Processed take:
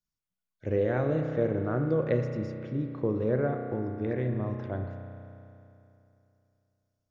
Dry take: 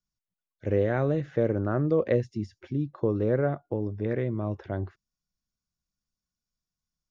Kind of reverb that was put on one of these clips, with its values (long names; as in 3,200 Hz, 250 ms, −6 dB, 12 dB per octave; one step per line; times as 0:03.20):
spring reverb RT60 2.9 s, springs 32 ms, chirp 30 ms, DRR 4.5 dB
level −3 dB